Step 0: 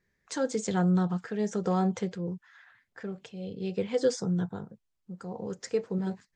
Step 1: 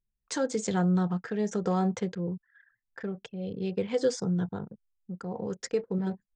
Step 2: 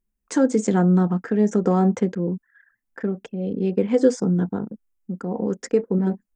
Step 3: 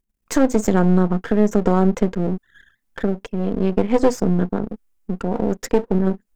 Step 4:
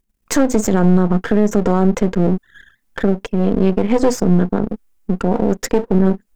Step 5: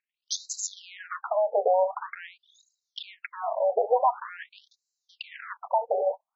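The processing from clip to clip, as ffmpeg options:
-filter_complex "[0:a]asplit=2[a][b];[b]acompressor=threshold=-34dB:ratio=6,volume=0dB[c];[a][c]amix=inputs=2:normalize=0,anlmdn=0.158,volume=-2.5dB"
-af "equalizer=f=125:t=o:w=1:g=-9,equalizer=f=250:t=o:w=1:g=11,equalizer=f=4k:t=o:w=1:g=-10,volume=6dB"
-filter_complex "[0:a]aeval=exprs='if(lt(val(0),0),0.251*val(0),val(0))':c=same,asplit=2[a][b];[b]acompressor=threshold=-27dB:ratio=6,volume=0dB[c];[a][c]amix=inputs=2:normalize=0,volume=2.5dB"
-af "alimiter=level_in=9dB:limit=-1dB:release=50:level=0:latency=1,volume=-2.5dB"
-af "aeval=exprs='abs(val(0))':c=same,afftfilt=real='re*between(b*sr/1024,600*pow(5500/600,0.5+0.5*sin(2*PI*0.46*pts/sr))/1.41,600*pow(5500/600,0.5+0.5*sin(2*PI*0.46*pts/sr))*1.41)':imag='im*between(b*sr/1024,600*pow(5500/600,0.5+0.5*sin(2*PI*0.46*pts/sr))/1.41,600*pow(5500/600,0.5+0.5*sin(2*PI*0.46*pts/sr))*1.41)':win_size=1024:overlap=0.75"

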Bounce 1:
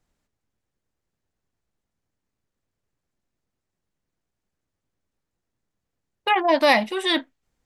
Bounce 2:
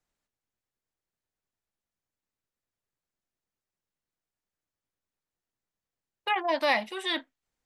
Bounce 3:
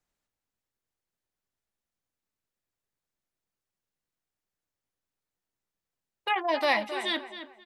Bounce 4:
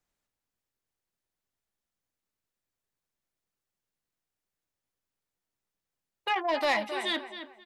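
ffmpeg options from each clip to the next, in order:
-filter_complex "[0:a]lowshelf=f=440:g=-8.5,acrossover=split=350|4500[a][b][c];[c]alimiter=level_in=9dB:limit=-24dB:level=0:latency=1,volume=-9dB[d];[a][b][d]amix=inputs=3:normalize=0,volume=-6dB"
-filter_complex "[0:a]asplit=2[a][b];[b]adelay=267,lowpass=f=3.3k:p=1,volume=-10.5dB,asplit=2[c][d];[d]adelay=267,lowpass=f=3.3k:p=1,volume=0.31,asplit=2[e][f];[f]adelay=267,lowpass=f=3.3k:p=1,volume=0.31[g];[a][c][e][g]amix=inputs=4:normalize=0"
-af "asoftclip=type=tanh:threshold=-18dB"

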